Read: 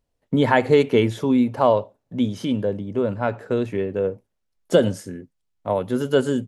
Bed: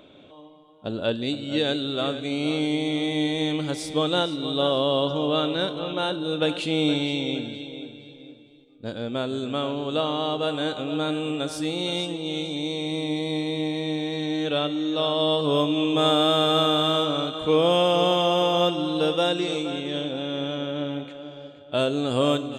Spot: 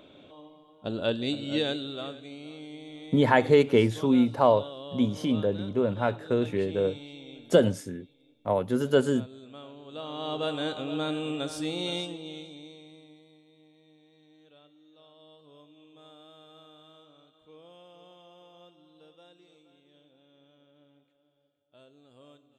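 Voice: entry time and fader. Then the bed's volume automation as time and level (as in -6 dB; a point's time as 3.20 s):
2.80 s, -3.5 dB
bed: 1.53 s -2.5 dB
2.50 s -18.5 dB
9.84 s -18.5 dB
10.38 s -4.5 dB
11.94 s -4.5 dB
13.41 s -33 dB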